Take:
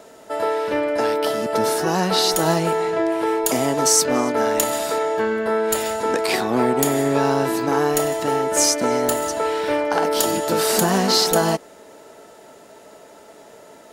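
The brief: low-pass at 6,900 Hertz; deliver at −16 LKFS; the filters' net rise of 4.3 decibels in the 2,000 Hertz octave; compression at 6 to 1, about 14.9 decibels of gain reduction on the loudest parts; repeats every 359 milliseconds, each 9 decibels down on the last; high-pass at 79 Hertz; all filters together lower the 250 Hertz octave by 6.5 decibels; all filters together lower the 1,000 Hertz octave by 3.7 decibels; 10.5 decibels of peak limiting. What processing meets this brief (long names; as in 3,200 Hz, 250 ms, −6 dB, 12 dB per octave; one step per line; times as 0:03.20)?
high-pass filter 79 Hz
low-pass filter 6,900 Hz
parametric band 250 Hz −8.5 dB
parametric band 1,000 Hz −6.5 dB
parametric band 2,000 Hz +7.5 dB
downward compressor 6 to 1, threshold −32 dBFS
brickwall limiter −29 dBFS
repeating echo 359 ms, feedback 35%, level −9 dB
level +21 dB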